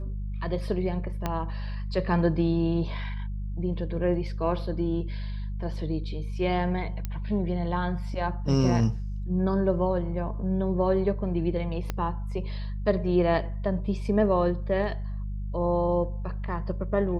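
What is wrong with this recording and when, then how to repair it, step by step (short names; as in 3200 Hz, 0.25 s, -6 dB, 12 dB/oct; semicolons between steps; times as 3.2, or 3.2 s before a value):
hum 50 Hz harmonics 4 -32 dBFS
1.26 pop -14 dBFS
7.05 pop -17 dBFS
11.9 pop -15 dBFS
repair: de-click; de-hum 50 Hz, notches 4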